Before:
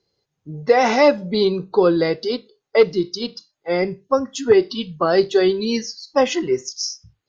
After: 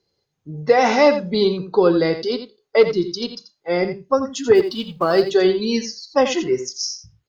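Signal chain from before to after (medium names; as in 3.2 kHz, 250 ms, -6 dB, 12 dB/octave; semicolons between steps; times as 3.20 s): 4.55–5.22 s: companding laws mixed up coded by A; on a send: delay 86 ms -10.5 dB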